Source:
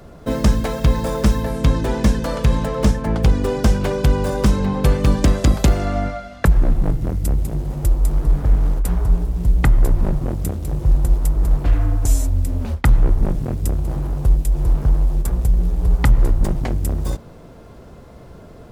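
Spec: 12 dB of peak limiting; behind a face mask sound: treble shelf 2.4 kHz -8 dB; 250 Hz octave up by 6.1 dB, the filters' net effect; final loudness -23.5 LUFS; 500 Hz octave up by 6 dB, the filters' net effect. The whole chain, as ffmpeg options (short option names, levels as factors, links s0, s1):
-af "equalizer=f=250:t=o:g=7,equalizer=f=500:t=o:g=5.5,alimiter=limit=0.282:level=0:latency=1,highshelf=f=2400:g=-8,volume=0.75"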